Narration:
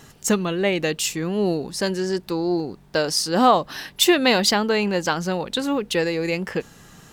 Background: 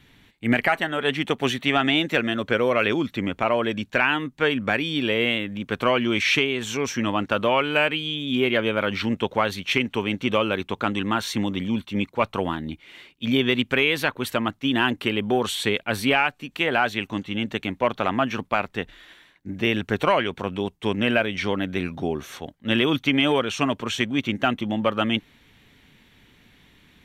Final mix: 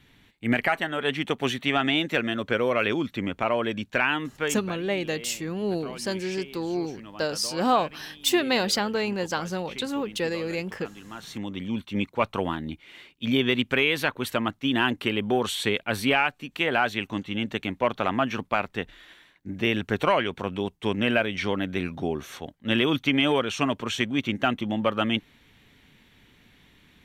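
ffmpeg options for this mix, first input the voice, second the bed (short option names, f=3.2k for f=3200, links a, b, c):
-filter_complex "[0:a]adelay=4250,volume=-6dB[a];[1:a]volume=14.5dB,afade=t=out:st=4.27:d=0.49:silence=0.149624,afade=t=in:st=11.09:d=0.91:silence=0.133352[b];[a][b]amix=inputs=2:normalize=0"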